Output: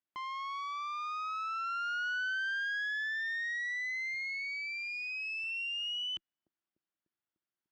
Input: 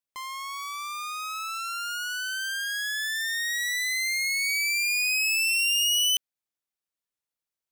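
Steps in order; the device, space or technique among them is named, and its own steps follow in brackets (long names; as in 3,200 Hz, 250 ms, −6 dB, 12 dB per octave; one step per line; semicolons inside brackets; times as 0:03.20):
0:04.14–0:05.44: high-pass filter 320 Hz 24 dB per octave
analogue delay pedal into a guitar amplifier (bucket-brigade delay 297 ms, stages 1,024, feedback 71%, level −17.5 dB; tube saturation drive 33 dB, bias 0.4; loudspeaker in its box 91–4,300 Hz, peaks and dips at 190 Hz +3 dB, 330 Hz +8 dB, 480 Hz −8 dB, 1,500 Hz +3 dB, 2,400 Hz −4 dB, 4,000 Hz −7 dB)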